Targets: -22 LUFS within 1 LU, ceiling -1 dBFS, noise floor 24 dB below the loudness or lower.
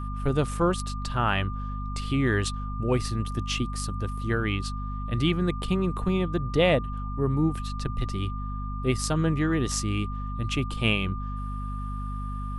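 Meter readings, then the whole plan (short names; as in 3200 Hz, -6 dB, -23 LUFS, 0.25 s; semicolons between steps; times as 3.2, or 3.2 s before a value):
hum 50 Hz; harmonics up to 250 Hz; hum level -30 dBFS; steady tone 1200 Hz; tone level -38 dBFS; loudness -28.0 LUFS; peak -9.5 dBFS; loudness target -22.0 LUFS
-> notches 50/100/150/200/250 Hz; notch 1200 Hz, Q 30; gain +6 dB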